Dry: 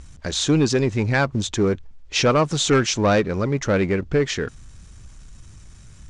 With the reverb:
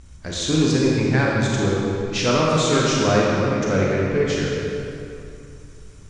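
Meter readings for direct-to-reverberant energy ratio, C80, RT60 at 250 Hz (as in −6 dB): −4.5 dB, −0.5 dB, 2.9 s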